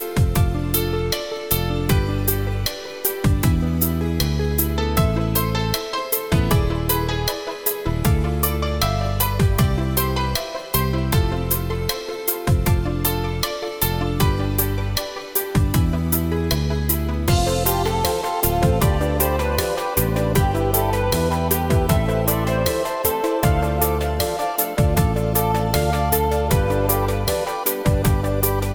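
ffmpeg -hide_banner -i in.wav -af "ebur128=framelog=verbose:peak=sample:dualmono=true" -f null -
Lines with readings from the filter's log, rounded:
Integrated loudness:
  I:         -17.5 LUFS
  Threshold: -27.5 LUFS
Loudness range:
  LRA:         1.8 LU
  Threshold: -37.4 LUFS
  LRA low:   -18.4 LUFS
  LRA high:  -16.6 LUFS
Sample peak:
  Peak:       -3.1 dBFS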